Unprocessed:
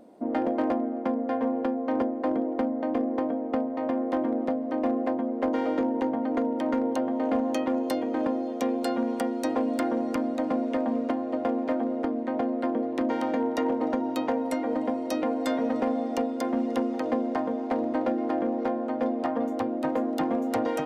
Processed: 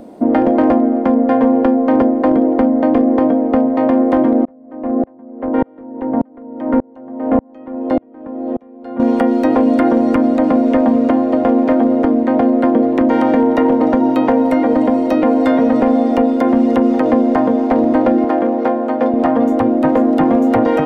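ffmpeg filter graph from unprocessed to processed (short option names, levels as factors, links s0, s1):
-filter_complex "[0:a]asettb=1/sr,asplit=3[s0][s1][s2];[s0]atrim=end=4.454[s3];[s1]atrim=start=4.45:end=9,asetpts=PTS-STARTPTS,afade=t=in:d=0.004:c=qsin,afade=t=out:st=4.546:d=0.004:c=qsin,lowpass=1700,aeval=exprs='val(0)*pow(10,-37*if(lt(mod(-1.7*n/s,1),2*abs(-1.7)/1000),1-mod(-1.7*n/s,1)/(2*abs(-1.7)/1000),(mod(-1.7*n/s,1)-2*abs(-1.7)/1000)/(1-2*abs(-1.7)/1000))/20)':c=same[s4];[s2]atrim=start=8.996[s5];[s3][s4]acrossfade=d=0.004:c1=hsin:c2=qsin[s6];[s6][s5]acrossfade=d=0.004:c1=qsin:c2=hsin,asettb=1/sr,asplit=3[s7][s8][s9];[s7]atrim=end=18.244[s10];[s8]atrim=start=18.24:end=19.14,asetpts=PTS-STARTPTS,afade=t=in:d=0.004:c=qsin,afade=t=out:st=0.896:d=0.004:c=qsin,highpass=f=420:p=1,equalizer=f=7300:t=o:w=2.4:g=-4[s11];[s9]atrim=start=19.136[s12];[s10][s11]acrossfade=d=0.004:c1=hsin:c2=qsin[s13];[s13][s12]acrossfade=d=0.004:c1=qsin:c2=hsin,lowshelf=f=160:g=10,acrossover=split=2800[s14][s15];[s15]acompressor=threshold=0.00141:ratio=4:attack=1:release=60[s16];[s14][s16]amix=inputs=2:normalize=0,alimiter=level_in=7.5:limit=0.891:release=50:level=0:latency=1,volume=0.668"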